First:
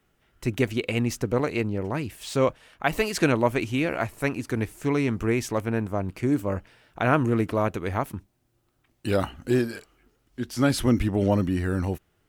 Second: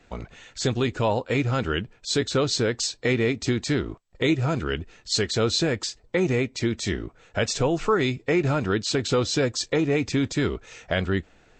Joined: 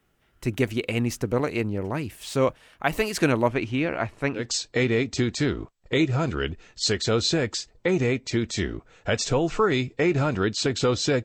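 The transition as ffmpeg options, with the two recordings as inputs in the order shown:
-filter_complex "[0:a]asettb=1/sr,asplit=3[s0][s1][s2];[s0]atrim=end=3.484[s3];[s1]atrim=start=3.48:end=4.47,asetpts=PTS-STARTPTS,afade=t=in:d=0.004:c=qsin,afade=t=out:st=0.986:d=0.004:c=qsin,lowpass=4400[s4];[s2]atrim=start=4.466[s5];[s3][s4]acrossfade=d=0.004:c1=hsin:c2=qsin[s6];[s6][s5]acrossfade=d=0.004:c1=qsin:c2=hsin,apad=whole_dur=11.24,atrim=end=11.24,atrim=end=4.47,asetpts=PTS-STARTPTS[s7];[1:a]atrim=start=2.62:end=9.53,asetpts=PTS-STARTPTS[s8];[s7][s8]acrossfade=d=0.14:c1=tri:c2=tri"

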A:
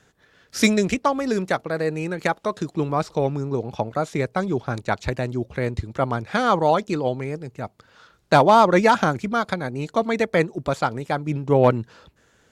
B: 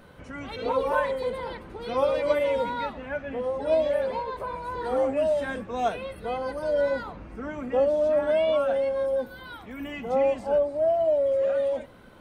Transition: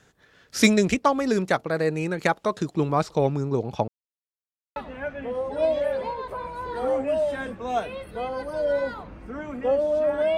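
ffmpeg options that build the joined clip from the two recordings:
-filter_complex "[0:a]apad=whole_dur=10.37,atrim=end=10.37,asplit=2[s0][s1];[s0]atrim=end=3.88,asetpts=PTS-STARTPTS,afade=t=out:st=3.876:d=0.004:c=hsin[s2];[s1]atrim=start=3.88:end=4.76,asetpts=PTS-STARTPTS,volume=0[s3];[1:a]atrim=start=2.85:end=8.46,asetpts=PTS-STARTPTS,afade=t=in:d=0.004:c=hsin[s4];[s2][s3][s4]concat=n=3:v=0:a=1"

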